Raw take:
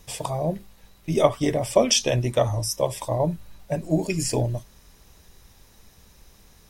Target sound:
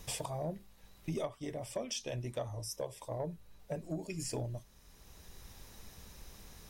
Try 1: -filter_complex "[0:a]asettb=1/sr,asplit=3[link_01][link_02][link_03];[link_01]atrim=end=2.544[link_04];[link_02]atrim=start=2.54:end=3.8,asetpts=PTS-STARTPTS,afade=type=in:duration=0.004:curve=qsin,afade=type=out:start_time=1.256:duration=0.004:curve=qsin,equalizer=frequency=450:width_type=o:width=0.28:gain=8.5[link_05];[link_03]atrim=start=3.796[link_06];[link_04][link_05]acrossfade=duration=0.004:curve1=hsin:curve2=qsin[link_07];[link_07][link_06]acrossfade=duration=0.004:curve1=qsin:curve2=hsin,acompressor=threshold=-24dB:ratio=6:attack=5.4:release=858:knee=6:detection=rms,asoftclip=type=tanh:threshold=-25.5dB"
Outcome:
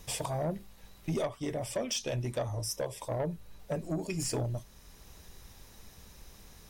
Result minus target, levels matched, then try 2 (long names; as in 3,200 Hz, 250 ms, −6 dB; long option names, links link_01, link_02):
downward compressor: peak gain reduction −7 dB
-filter_complex "[0:a]asettb=1/sr,asplit=3[link_01][link_02][link_03];[link_01]atrim=end=2.544[link_04];[link_02]atrim=start=2.54:end=3.8,asetpts=PTS-STARTPTS,afade=type=in:duration=0.004:curve=qsin,afade=type=out:start_time=1.256:duration=0.004:curve=qsin,equalizer=frequency=450:width_type=o:width=0.28:gain=8.5[link_05];[link_03]atrim=start=3.796[link_06];[link_04][link_05]acrossfade=duration=0.004:curve1=hsin:curve2=qsin[link_07];[link_07][link_06]acrossfade=duration=0.004:curve1=qsin:curve2=hsin,acompressor=threshold=-32.5dB:ratio=6:attack=5.4:release=858:knee=6:detection=rms,asoftclip=type=tanh:threshold=-25.5dB"